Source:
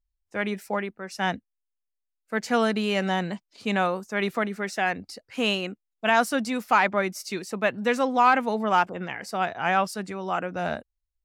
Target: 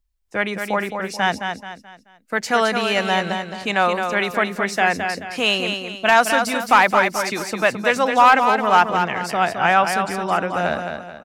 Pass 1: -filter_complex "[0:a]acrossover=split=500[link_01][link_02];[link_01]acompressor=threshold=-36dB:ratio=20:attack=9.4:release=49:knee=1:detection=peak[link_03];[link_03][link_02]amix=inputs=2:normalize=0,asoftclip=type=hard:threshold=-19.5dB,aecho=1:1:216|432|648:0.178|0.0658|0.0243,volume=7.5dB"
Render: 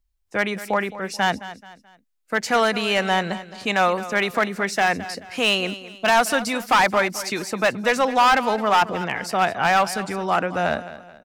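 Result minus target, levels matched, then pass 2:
hard clipping: distortion +14 dB; echo-to-direct −8.5 dB
-filter_complex "[0:a]acrossover=split=500[link_01][link_02];[link_01]acompressor=threshold=-36dB:ratio=20:attack=9.4:release=49:knee=1:detection=peak[link_03];[link_03][link_02]amix=inputs=2:normalize=0,asoftclip=type=hard:threshold=-12dB,aecho=1:1:216|432|648|864:0.473|0.175|0.0648|0.024,volume=7.5dB"

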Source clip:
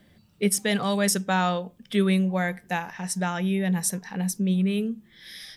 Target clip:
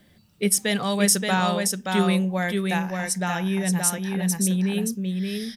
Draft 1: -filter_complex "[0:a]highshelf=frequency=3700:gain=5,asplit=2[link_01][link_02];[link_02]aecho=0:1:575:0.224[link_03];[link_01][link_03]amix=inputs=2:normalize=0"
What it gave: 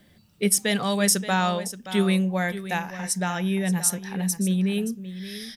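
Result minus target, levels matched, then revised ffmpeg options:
echo-to-direct −9 dB
-filter_complex "[0:a]highshelf=frequency=3700:gain=5,asplit=2[link_01][link_02];[link_02]aecho=0:1:575:0.631[link_03];[link_01][link_03]amix=inputs=2:normalize=0"

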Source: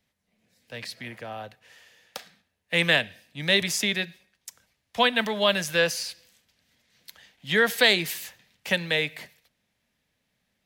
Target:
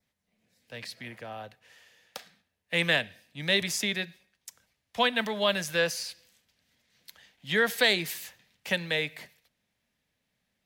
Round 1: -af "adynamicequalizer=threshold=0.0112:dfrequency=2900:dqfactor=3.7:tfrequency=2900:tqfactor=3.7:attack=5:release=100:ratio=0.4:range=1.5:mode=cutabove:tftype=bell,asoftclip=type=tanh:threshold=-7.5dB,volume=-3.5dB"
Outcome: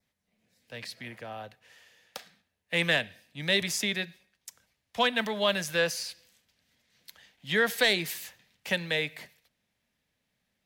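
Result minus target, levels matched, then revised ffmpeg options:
soft clipping: distortion +12 dB
-af "adynamicequalizer=threshold=0.0112:dfrequency=2900:dqfactor=3.7:tfrequency=2900:tqfactor=3.7:attack=5:release=100:ratio=0.4:range=1.5:mode=cutabove:tftype=bell,asoftclip=type=tanh:threshold=-0.5dB,volume=-3.5dB"

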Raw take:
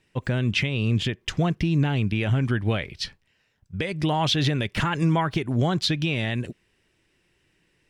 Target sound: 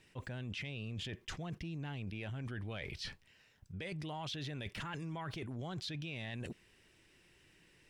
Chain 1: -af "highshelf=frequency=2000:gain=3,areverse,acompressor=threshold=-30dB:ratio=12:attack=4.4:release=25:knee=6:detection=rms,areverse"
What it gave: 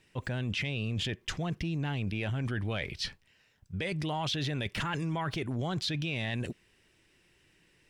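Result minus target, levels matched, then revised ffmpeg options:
downward compressor: peak gain reduction −9.5 dB
-af "highshelf=frequency=2000:gain=3,areverse,acompressor=threshold=-40.5dB:ratio=12:attack=4.4:release=25:knee=6:detection=rms,areverse"

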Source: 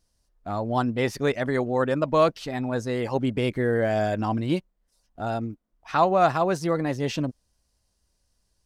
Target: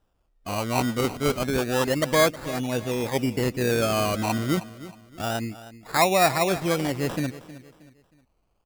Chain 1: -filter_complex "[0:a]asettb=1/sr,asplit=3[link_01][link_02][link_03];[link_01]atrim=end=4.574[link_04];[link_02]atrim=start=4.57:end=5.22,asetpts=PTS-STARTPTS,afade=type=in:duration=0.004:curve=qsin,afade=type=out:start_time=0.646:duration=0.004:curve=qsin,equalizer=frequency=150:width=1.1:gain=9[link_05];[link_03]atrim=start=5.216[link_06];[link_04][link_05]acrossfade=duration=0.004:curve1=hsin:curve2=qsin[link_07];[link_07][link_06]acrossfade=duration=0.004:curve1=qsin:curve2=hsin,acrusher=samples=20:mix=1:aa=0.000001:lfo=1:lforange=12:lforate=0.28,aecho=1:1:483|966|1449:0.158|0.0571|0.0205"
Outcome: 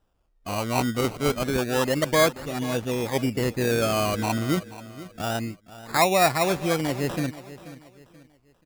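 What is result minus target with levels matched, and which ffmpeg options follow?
echo 168 ms late
-filter_complex "[0:a]asettb=1/sr,asplit=3[link_01][link_02][link_03];[link_01]atrim=end=4.574[link_04];[link_02]atrim=start=4.57:end=5.22,asetpts=PTS-STARTPTS,afade=type=in:duration=0.004:curve=qsin,afade=type=out:start_time=0.646:duration=0.004:curve=qsin,equalizer=frequency=150:width=1.1:gain=9[link_05];[link_03]atrim=start=5.216[link_06];[link_04][link_05]acrossfade=duration=0.004:curve1=hsin:curve2=qsin[link_07];[link_07][link_06]acrossfade=duration=0.004:curve1=qsin:curve2=hsin,acrusher=samples=20:mix=1:aa=0.000001:lfo=1:lforange=12:lforate=0.28,aecho=1:1:315|630|945:0.158|0.0571|0.0205"

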